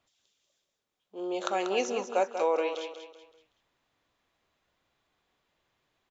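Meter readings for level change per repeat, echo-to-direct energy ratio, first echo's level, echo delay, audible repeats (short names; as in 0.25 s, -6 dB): -8.5 dB, -8.0 dB, -8.5 dB, 0.189 s, 4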